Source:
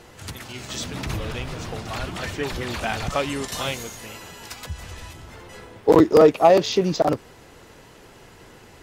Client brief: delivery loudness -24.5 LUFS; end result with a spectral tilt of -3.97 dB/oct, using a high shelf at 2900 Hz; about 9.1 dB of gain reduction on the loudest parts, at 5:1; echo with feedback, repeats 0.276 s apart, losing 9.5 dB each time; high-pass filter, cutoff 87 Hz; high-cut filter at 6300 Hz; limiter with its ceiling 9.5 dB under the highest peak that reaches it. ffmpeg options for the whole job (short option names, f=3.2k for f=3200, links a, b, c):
-af "highpass=87,lowpass=6.3k,highshelf=f=2.9k:g=4,acompressor=threshold=-19dB:ratio=5,alimiter=limit=-18.5dB:level=0:latency=1,aecho=1:1:276|552|828|1104:0.335|0.111|0.0365|0.012,volume=5.5dB"